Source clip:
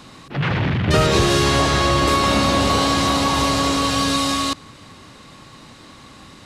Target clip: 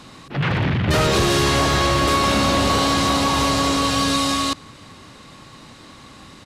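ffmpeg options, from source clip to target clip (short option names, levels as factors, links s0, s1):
-af "aeval=exprs='0.266*(abs(mod(val(0)/0.266+3,4)-2)-1)':c=same,aresample=32000,aresample=44100"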